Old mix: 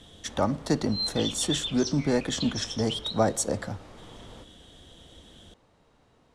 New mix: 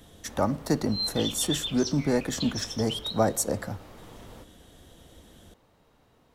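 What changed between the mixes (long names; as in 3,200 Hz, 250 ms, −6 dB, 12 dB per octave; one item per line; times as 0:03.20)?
speech: add parametric band 3,300 Hz −8.5 dB 0.47 octaves
master: remove low-pass filter 9,600 Hz 24 dB per octave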